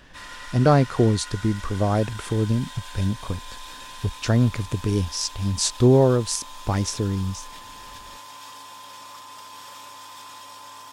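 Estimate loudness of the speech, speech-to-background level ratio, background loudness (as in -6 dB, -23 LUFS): -23.0 LUFS, 17.0 dB, -40.0 LUFS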